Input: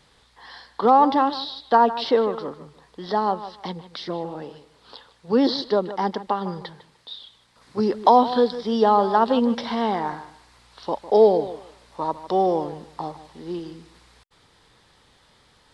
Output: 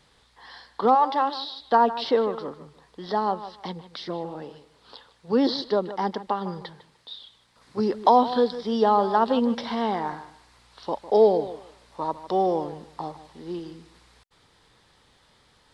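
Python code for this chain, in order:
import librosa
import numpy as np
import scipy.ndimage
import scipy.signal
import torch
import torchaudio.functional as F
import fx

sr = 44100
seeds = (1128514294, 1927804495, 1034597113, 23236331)

y = fx.highpass(x, sr, hz=fx.line((0.94, 730.0), (1.59, 210.0)), slope=12, at=(0.94, 1.59), fade=0.02)
y = y * 10.0 ** (-2.5 / 20.0)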